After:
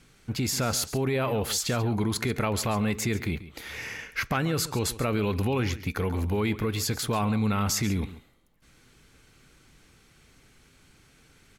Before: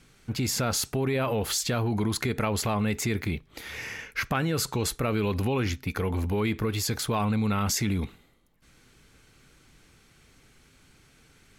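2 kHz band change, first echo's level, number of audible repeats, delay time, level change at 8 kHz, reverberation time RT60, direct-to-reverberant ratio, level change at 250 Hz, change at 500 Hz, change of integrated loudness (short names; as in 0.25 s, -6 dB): 0.0 dB, -15.5 dB, 1, 0.138 s, 0.0 dB, none, none, 0.0 dB, 0.0 dB, 0.0 dB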